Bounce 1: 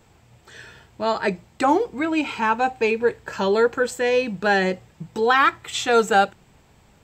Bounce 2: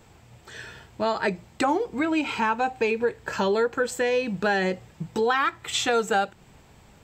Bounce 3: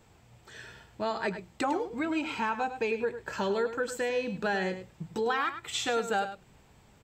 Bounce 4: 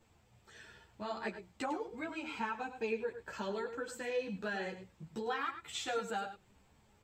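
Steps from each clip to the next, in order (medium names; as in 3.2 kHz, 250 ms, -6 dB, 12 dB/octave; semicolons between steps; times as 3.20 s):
compression 3:1, threshold -24 dBFS, peak gain reduction 9.5 dB; trim +2 dB
delay 103 ms -11 dB; trim -6.5 dB
three-phase chorus; trim -5 dB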